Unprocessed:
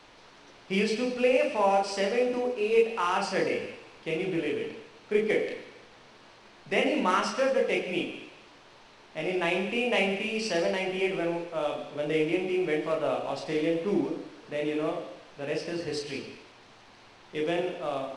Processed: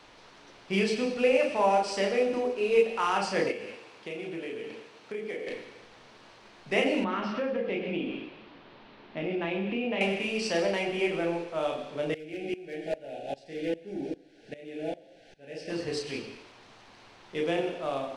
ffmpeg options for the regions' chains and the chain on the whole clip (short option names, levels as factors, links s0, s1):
-filter_complex "[0:a]asettb=1/sr,asplit=3[s0][s1][s2];[s0]atrim=end=3.514[s3];[s1]atrim=start=3.51:end=5.47,asetpts=PTS-STARTPTS,afade=t=in:d=0.004:c=qsin,afade=t=out:st=1.956:d=0.004:c=qsin,highpass=f=190:p=1,acompressor=threshold=0.0178:ratio=3:attack=3.2:release=140:knee=1:detection=peak[s4];[s2]atrim=start=5.466[s5];[s3][s4]acrossfade=d=0.004:c1=hsin:c2=qsin[s6];[s6][s5]acrossfade=d=0.004:c1=qsin:c2=hsin,asettb=1/sr,asplit=3[s7][s8][s9];[s7]atrim=end=7.044[s10];[s8]atrim=start=7.04:end=10.01,asetpts=PTS-STARTPTS,afade=t=in:d=0.004:c=qsin,afade=t=out:st=2.966:d=0.004:c=qsin,lowpass=f=4000:w=0.5412,lowpass=f=4000:w=1.3066,equalizer=f=230:t=o:w=1.4:g=8.5,acompressor=threshold=0.0355:ratio=3:attack=3.2:release=140:knee=1:detection=peak[s11];[s9]atrim=start=10.006[s12];[s10][s11]acrossfade=d=0.004:c1=hsin:c2=qsin[s13];[s13][s12]acrossfade=d=0.004:c1=qsin:c2=hsin,asettb=1/sr,asplit=3[s14][s15][s16];[s14]atrim=end=12.144[s17];[s15]atrim=start=12.14:end=15.7,asetpts=PTS-STARTPTS,afade=t=in:d=0.004:c=qsin,afade=t=out:st=3.556:d=0.004:c=qsin,volume=11.9,asoftclip=hard,volume=0.0841,asuperstop=centerf=1100:order=20:qfactor=1.9,aeval=exprs='val(0)*pow(10,-20*if(lt(mod(-2.5*n/s,1),2*abs(-2.5)/1000),1-mod(-2.5*n/s,1)/(2*abs(-2.5)/1000),(mod(-2.5*n/s,1)-2*abs(-2.5)/1000)/(1-2*abs(-2.5)/1000))/20)':c=same[s18];[s16]atrim=start=15.696[s19];[s17][s18]acrossfade=d=0.004:c1=hsin:c2=qsin[s20];[s20][s19]acrossfade=d=0.004:c1=qsin:c2=hsin"